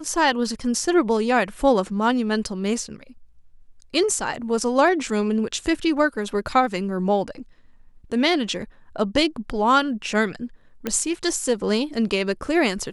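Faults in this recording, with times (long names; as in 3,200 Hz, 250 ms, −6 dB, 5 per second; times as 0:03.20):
0:10.87: click −11 dBFS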